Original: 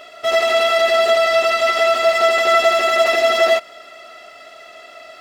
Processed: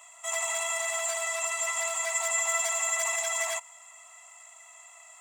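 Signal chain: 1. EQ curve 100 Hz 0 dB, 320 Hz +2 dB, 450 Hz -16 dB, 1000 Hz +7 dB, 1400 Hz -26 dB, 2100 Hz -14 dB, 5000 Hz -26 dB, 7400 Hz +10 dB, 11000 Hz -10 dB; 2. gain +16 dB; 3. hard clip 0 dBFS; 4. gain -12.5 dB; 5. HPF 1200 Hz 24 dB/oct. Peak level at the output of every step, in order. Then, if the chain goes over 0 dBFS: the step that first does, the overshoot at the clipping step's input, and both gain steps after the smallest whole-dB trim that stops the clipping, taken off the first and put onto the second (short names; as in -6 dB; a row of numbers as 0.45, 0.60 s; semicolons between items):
-10.0, +6.0, 0.0, -12.5, -16.5 dBFS; step 2, 6.0 dB; step 2 +10 dB, step 4 -6.5 dB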